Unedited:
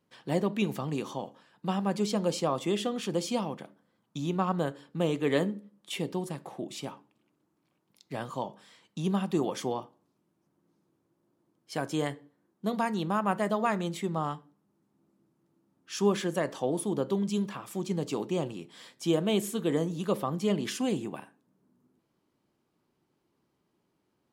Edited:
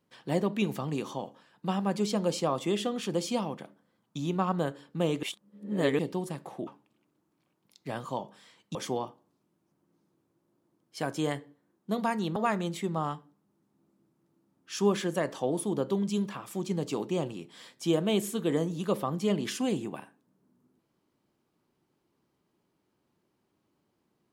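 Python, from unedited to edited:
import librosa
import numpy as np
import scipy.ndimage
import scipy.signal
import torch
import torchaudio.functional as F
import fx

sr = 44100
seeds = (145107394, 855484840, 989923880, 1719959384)

y = fx.edit(x, sr, fx.reverse_span(start_s=5.23, length_s=0.76),
    fx.cut(start_s=6.67, length_s=0.25),
    fx.cut(start_s=9.0, length_s=0.5),
    fx.cut(start_s=13.11, length_s=0.45), tone=tone)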